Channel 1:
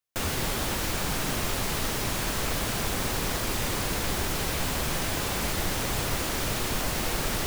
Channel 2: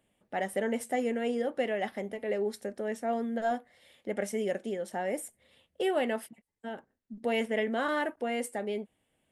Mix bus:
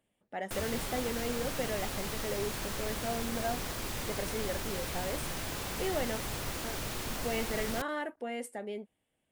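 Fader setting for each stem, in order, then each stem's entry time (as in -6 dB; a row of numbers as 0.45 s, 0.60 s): -8.5 dB, -5.5 dB; 0.35 s, 0.00 s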